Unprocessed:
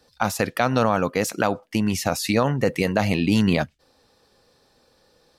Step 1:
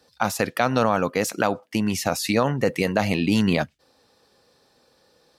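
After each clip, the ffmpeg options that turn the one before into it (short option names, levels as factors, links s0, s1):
-af "highpass=f=110:p=1"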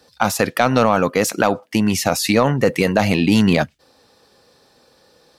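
-af "acontrast=63"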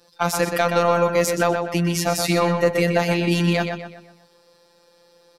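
-filter_complex "[0:a]afftfilt=real='hypot(re,im)*cos(PI*b)':imag='0':win_size=1024:overlap=0.75,asplit=2[s0][s1];[s1]adelay=124,lowpass=f=4500:p=1,volume=0.531,asplit=2[s2][s3];[s3]adelay=124,lowpass=f=4500:p=1,volume=0.43,asplit=2[s4][s5];[s5]adelay=124,lowpass=f=4500:p=1,volume=0.43,asplit=2[s6][s7];[s7]adelay=124,lowpass=f=4500:p=1,volume=0.43,asplit=2[s8][s9];[s9]adelay=124,lowpass=f=4500:p=1,volume=0.43[s10];[s2][s4][s6][s8][s10]amix=inputs=5:normalize=0[s11];[s0][s11]amix=inputs=2:normalize=0"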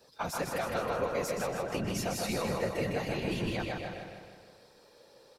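-af "acompressor=threshold=0.0282:ratio=2.5,afftfilt=real='hypot(re,im)*cos(2*PI*random(0))':imag='hypot(re,im)*sin(2*PI*random(1))':win_size=512:overlap=0.75,aecho=1:1:157|314|471|628|785|942|1099:0.562|0.292|0.152|0.0791|0.0411|0.0214|0.0111,volume=1.19"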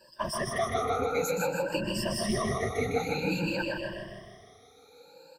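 -af "afftfilt=real='re*pow(10,24/40*sin(2*PI*(1.3*log(max(b,1)*sr/1024/100)/log(2)-(0.53)*(pts-256)/sr)))':imag='im*pow(10,24/40*sin(2*PI*(1.3*log(max(b,1)*sr/1024/100)/log(2)-(0.53)*(pts-256)/sr)))':win_size=1024:overlap=0.75,volume=0.75"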